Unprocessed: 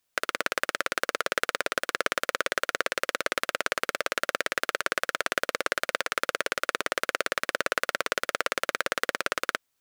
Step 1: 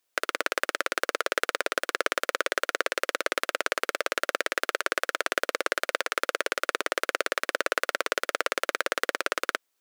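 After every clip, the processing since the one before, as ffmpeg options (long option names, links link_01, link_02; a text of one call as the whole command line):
ffmpeg -i in.wav -af "lowshelf=frequency=240:width_type=q:width=1.5:gain=-9" out.wav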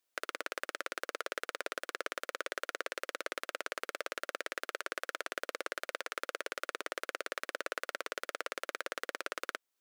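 ffmpeg -i in.wav -af "alimiter=limit=-10.5dB:level=0:latency=1:release=334,volume=-6dB" out.wav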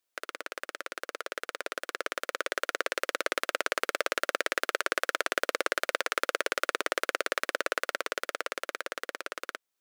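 ffmpeg -i in.wav -af "dynaudnorm=framelen=440:gausssize=11:maxgain=10dB" out.wav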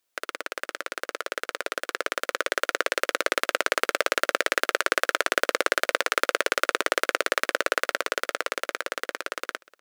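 ffmpeg -i in.wav -af "aecho=1:1:416:0.0708,volume=5.5dB" out.wav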